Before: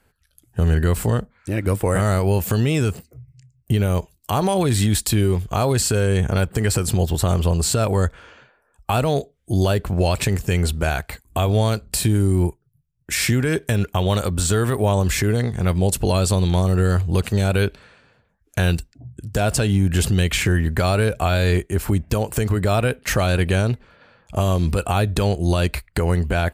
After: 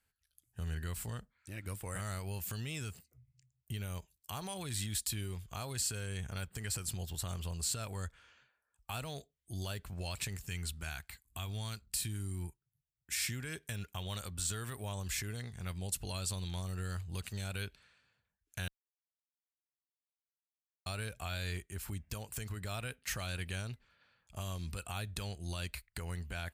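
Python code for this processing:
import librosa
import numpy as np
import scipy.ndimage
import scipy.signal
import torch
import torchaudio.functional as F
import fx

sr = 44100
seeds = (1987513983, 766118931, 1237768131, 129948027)

y = fx.peak_eq(x, sr, hz=550.0, db=-7.0, octaves=0.77, at=(10.47, 13.31))
y = fx.edit(y, sr, fx.silence(start_s=18.68, length_s=2.18), tone=tone)
y = fx.tone_stack(y, sr, knobs='5-5-5')
y = y * 10.0 ** (-6.5 / 20.0)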